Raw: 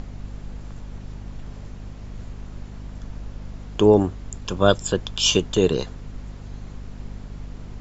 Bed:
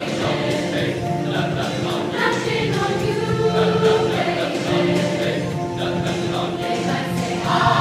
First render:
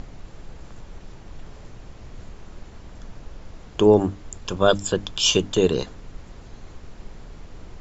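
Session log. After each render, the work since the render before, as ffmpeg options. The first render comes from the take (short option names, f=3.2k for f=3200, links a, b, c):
-af "bandreject=f=50:t=h:w=6,bandreject=f=100:t=h:w=6,bandreject=f=150:t=h:w=6,bandreject=f=200:t=h:w=6,bandreject=f=250:t=h:w=6,bandreject=f=300:t=h:w=6"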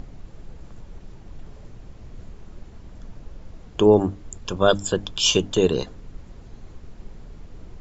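-af "afftdn=nr=6:nf=-43"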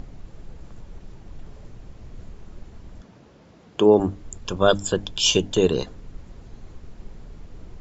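-filter_complex "[0:a]asettb=1/sr,asplit=3[a][b][c];[a]atrim=end=3.014[d];[b]atrim=start=3.01:end=4,asetpts=PTS-STARTPTS,afade=t=in:d=0.004:c=qsin,afade=t=out:st=0.986:d=0.004:c=qsin,highpass=160,lowpass=6.9k[e];[c]atrim=start=3.996[f];[d][e]acrossfade=d=0.004:c1=hsin:c2=qsin[g];[g][f]acrossfade=d=0.004:c1=qsin:c2=hsin,asettb=1/sr,asplit=3[h][i][j];[h]atrim=end=5.044[k];[i]atrim=start=5.04:end=5.55,asetpts=PTS-STARTPTS,afade=t=in:d=0.004:c=qsin,afade=t=out:st=0.506:d=0.004:c=qsin,equalizer=f=1.2k:w=5.4:g=-9[l];[j]atrim=start=5.546[m];[k][l]acrossfade=d=0.004:c1=hsin:c2=qsin[n];[n][m]acrossfade=d=0.004:c1=qsin:c2=hsin"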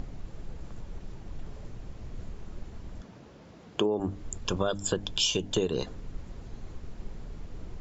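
-af "alimiter=limit=-10dB:level=0:latency=1:release=288,acompressor=threshold=-23dB:ratio=10"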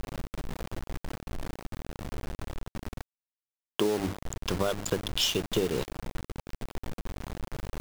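-af "adynamicsmooth=sensitivity=7.5:basefreq=1.1k,acrusher=bits=5:mix=0:aa=0.000001"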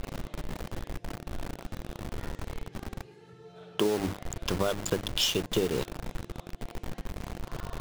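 -filter_complex "[1:a]volume=-32dB[a];[0:a][a]amix=inputs=2:normalize=0"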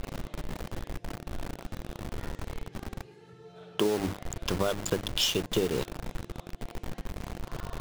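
-af anull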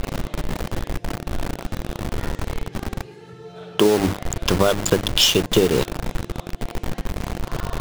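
-af "volume=11dB,alimiter=limit=-1dB:level=0:latency=1"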